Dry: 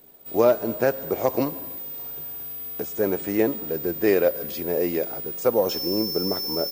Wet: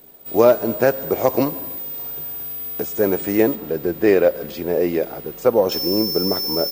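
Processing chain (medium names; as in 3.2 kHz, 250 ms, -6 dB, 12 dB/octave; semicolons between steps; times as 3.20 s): 3.55–5.72 s: treble shelf 5.4 kHz -10 dB; trim +5 dB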